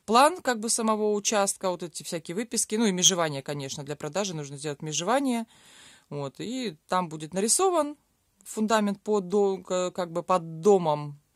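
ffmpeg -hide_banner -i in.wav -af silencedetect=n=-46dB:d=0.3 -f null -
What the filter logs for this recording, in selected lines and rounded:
silence_start: 7.93
silence_end: 8.41 | silence_duration: 0.47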